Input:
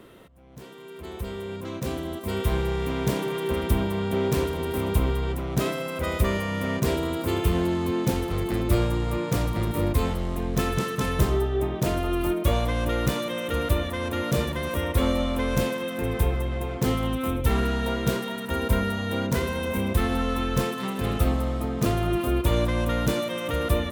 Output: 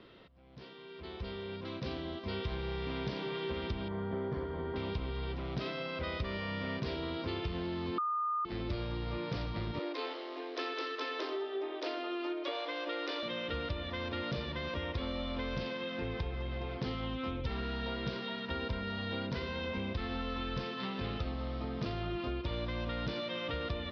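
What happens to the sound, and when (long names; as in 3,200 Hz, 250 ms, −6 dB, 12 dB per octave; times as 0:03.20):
0:03.88–0:04.76: Savitzky-Golay smoothing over 41 samples
0:07.98–0:08.45: beep over 1,220 Hz −14.5 dBFS
0:09.79–0:13.23: Chebyshev high-pass filter 270 Hz, order 10
whole clip: Butterworth low-pass 5,100 Hz 72 dB per octave; high-shelf EQ 3,100 Hz +10.5 dB; downward compressor, threshold −25 dBFS; level −8 dB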